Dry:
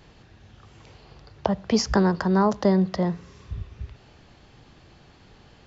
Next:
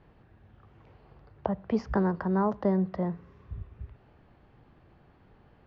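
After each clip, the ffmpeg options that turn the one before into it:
-af "lowpass=1700,volume=0.501"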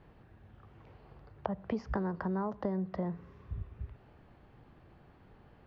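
-af "acompressor=threshold=0.0282:ratio=5"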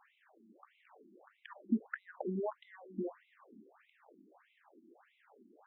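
-af "afftfilt=real='re*between(b*sr/1024,250*pow(2900/250,0.5+0.5*sin(2*PI*1.6*pts/sr))/1.41,250*pow(2900/250,0.5+0.5*sin(2*PI*1.6*pts/sr))*1.41)':imag='im*between(b*sr/1024,250*pow(2900/250,0.5+0.5*sin(2*PI*1.6*pts/sr))/1.41,250*pow(2900/250,0.5+0.5*sin(2*PI*1.6*pts/sr))*1.41)':win_size=1024:overlap=0.75,volume=1.68"

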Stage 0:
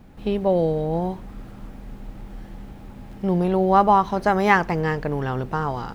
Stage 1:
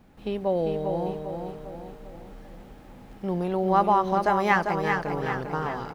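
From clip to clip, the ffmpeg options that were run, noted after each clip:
-af "lowshelf=f=190:g=-6.5,aecho=1:1:397|794|1191|1588|1985|2382:0.531|0.255|0.122|0.0587|0.0282|0.0135,volume=0.596"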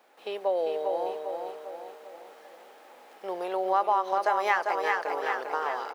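-af "highpass=f=460:w=0.5412,highpass=f=460:w=1.3066,acompressor=threshold=0.0501:ratio=2,volume=1.26"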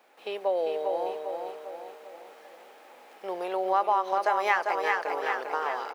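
-af "equalizer=f=2400:t=o:w=0.46:g=3"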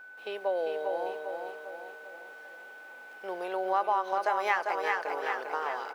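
-af "aeval=exprs='val(0)+0.00708*sin(2*PI*1500*n/s)':c=same,volume=0.708"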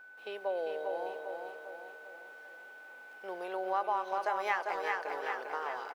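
-filter_complex "[0:a]asplit=2[s0][s1];[s1]adelay=230,highpass=300,lowpass=3400,asoftclip=type=hard:threshold=0.0668,volume=0.2[s2];[s0][s2]amix=inputs=2:normalize=0,volume=0.596"

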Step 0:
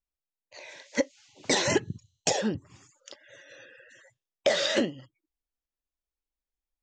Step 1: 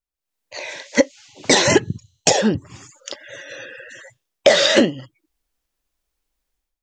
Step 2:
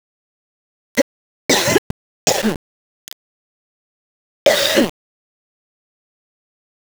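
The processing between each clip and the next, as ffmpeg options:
-af "dynaudnorm=f=120:g=5:m=5.62"
-af "aeval=exprs='val(0)*gte(abs(val(0)),0.133)':c=same"

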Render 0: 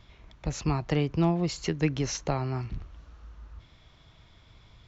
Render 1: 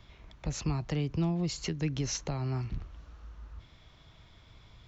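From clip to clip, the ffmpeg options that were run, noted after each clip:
-filter_complex "[0:a]asplit=2[s0][s1];[s1]alimiter=limit=0.0841:level=0:latency=1:release=97,volume=1.26[s2];[s0][s2]amix=inputs=2:normalize=0,acrossover=split=270|3000[s3][s4][s5];[s4]acompressor=threshold=0.0178:ratio=2[s6];[s3][s6][s5]amix=inputs=3:normalize=0,volume=0.422"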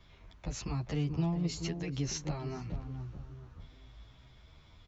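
-filter_complex "[0:a]asplit=2[s0][s1];[s1]adelay=431,lowpass=f=910:p=1,volume=0.422,asplit=2[s2][s3];[s3]adelay=431,lowpass=f=910:p=1,volume=0.38,asplit=2[s4][s5];[s5]adelay=431,lowpass=f=910:p=1,volume=0.38,asplit=2[s6][s7];[s7]adelay=431,lowpass=f=910:p=1,volume=0.38[s8];[s0][s2][s4][s6][s8]amix=inputs=5:normalize=0,asplit=2[s9][s10];[s10]adelay=10.4,afreqshift=0.86[s11];[s9][s11]amix=inputs=2:normalize=1"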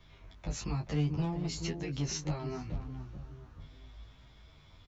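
-filter_complex "[0:a]acrossover=split=1400[s0][s1];[s0]volume=22.4,asoftclip=hard,volume=0.0447[s2];[s2][s1]amix=inputs=2:normalize=0,asplit=2[s3][s4];[s4]adelay=20,volume=0.473[s5];[s3][s5]amix=inputs=2:normalize=0"

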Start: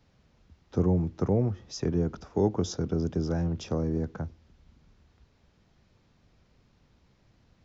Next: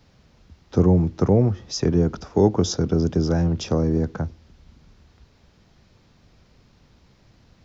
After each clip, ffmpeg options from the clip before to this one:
-af "equalizer=f=4900:w=1.5:g=3,volume=2.51"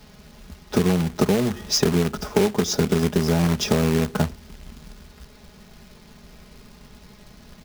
-af "aecho=1:1:4.8:0.75,acompressor=threshold=0.0708:ratio=16,acrusher=bits=2:mode=log:mix=0:aa=0.000001,volume=2.24"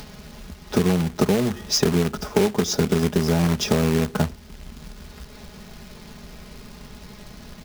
-af "acompressor=mode=upward:threshold=0.0251:ratio=2.5"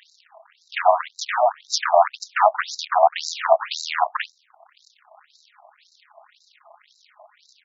-af "aeval=exprs='0.668*(cos(1*acos(clip(val(0)/0.668,-1,1)))-cos(1*PI/2))+0.211*(cos(5*acos(clip(val(0)/0.668,-1,1)))-cos(5*PI/2))+0.299*(cos(7*acos(clip(val(0)/0.668,-1,1)))-cos(7*PI/2))+0.237*(cos(8*acos(clip(val(0)/0.668,-1,1)))-cos(8*PI/2))':c=same,highpass=f=660:t=q:w=6,afftfilt=real='re*between(b*sr/1024,840*pow(5400/840,0.5+0.5*sin(2*PI*1.9*pts/sr))/1.41,840*pow(5400/840,0.5+0.5*sin(2*PI*1.9*pts/sr))*1.41)':imag='im*between(b*sr/1024,840*pow(5400/840,0.5+0.5*sin(2*PI*1.9*pts/sr))/1.41,840*pow(5400/840,0.5+0.5*sin(2*PI*1.9*pts/sr))*1.41)':win_size=1024:overlap=0.75"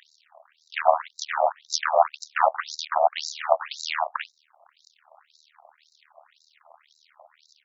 -af "tremolo=f=77:d=0.919"

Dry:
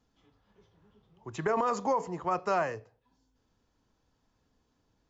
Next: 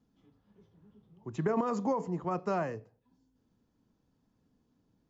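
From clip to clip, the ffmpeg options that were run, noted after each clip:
-af "equalizer=f=200:w=0.61:g=13.5,volume=0.422"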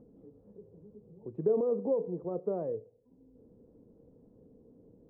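-af "acompressor=mode=upward:threshold=0.01:ratio=2.5,lowpass=f=480:t=q:w=4.9,volume=0.473"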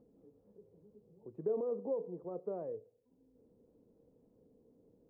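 -af "lowshelf=f=320:g=-7,volume=0.596"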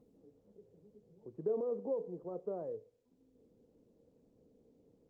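-ar 48000 -c:a libopus -b:a 24k

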